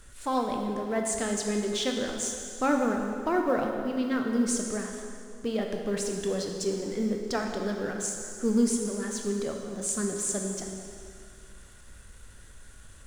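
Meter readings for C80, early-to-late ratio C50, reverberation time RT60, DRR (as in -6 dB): 4.5 dB, 3.5 dB, 2.3 s, 2.0 dB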